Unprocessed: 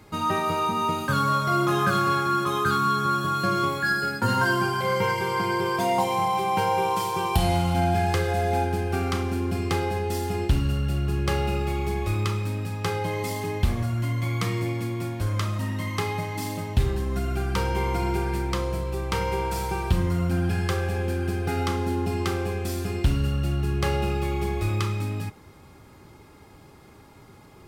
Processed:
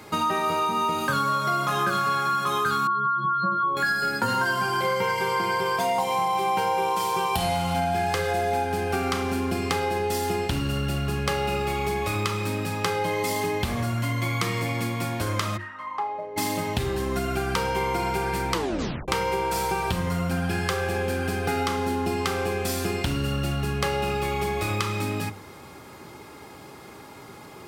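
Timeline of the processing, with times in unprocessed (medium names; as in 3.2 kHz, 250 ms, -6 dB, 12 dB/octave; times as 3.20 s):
2.87–3.77 s: spectral contrast enhancement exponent 2.3
15.56–16.36 s: band-pass filter 1.9 kHz -> 450 Hz, Q 4.7
18.53 s: tape stop 0.55 s
whole clip: high-pass 250 Hz 6 dB/octave; hum notches 50/100/150/200/250/300/350 Hz; compression 4:1, threshold -32 dBFS; trim +9 dB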